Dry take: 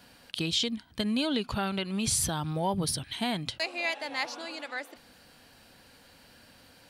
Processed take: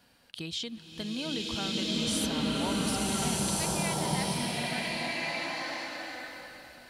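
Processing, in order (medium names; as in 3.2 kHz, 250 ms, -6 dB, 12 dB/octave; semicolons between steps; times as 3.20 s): swelling reverb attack 1470 ms, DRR -7.5 dB; trim -7.5 dB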